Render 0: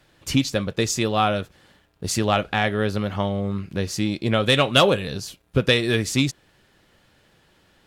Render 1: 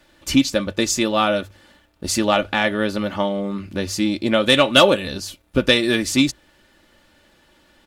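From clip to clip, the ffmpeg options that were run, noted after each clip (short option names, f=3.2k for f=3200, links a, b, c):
-af "equalizer=f=110:w=7.5:g=-11.5,bandreject=f=50:t=h:w=6,bandreject=f=100:t=h:w=6,aecho=1:1:3.4:0.51,volume=2.5dB"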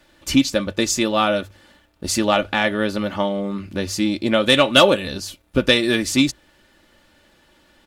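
-af anull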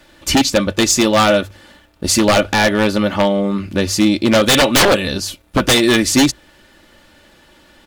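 -af "aeval=exprs='0.224*(abs(mod(val(0)/0.224+3,4)-2)-1)':c=same,volume=7.5dB"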